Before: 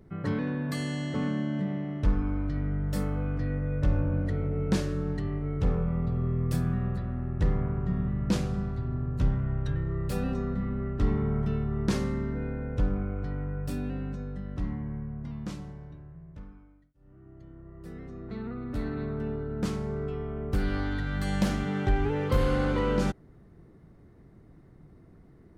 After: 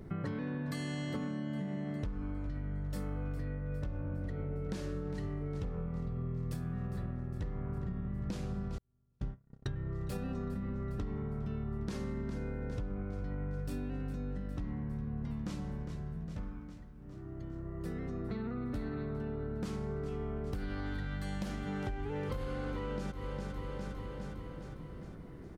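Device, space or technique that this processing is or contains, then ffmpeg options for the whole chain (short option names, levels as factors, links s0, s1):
serial compression, leveller first: -filter_complex "[0:a]aecho=1:1:407|814|1221|1628|2035|2442:0.168|0.099|0.0584|0.0345|0.0203|0.012,asettb=1/sr,asplit=3[s0][s1][s2];[s0]atrim=end=8.784[s3];[s1]atrim=start=8.78:end=9.66,asetpts=PTS-STARTPTS,afade=t=in:d=0.004:c=qsin,afade=t=out:st=0.876:d=0.004:c=qsin,agate=range=0.00316:threshold=0.0794:ratio=16:detection=peak[s4];[s2]atrim=start=9.656[s5];[s3][s4]acrossfade=d=0.004:c1=hsin:c2=qsin[s6];[s6][s5]acrossfade=d=0.004:c1=qsin:c2=hsin,acompressor=threshold=0.0282:ratio=2.5,acompressor=threshold=0.00891:ratio=6,volume=2"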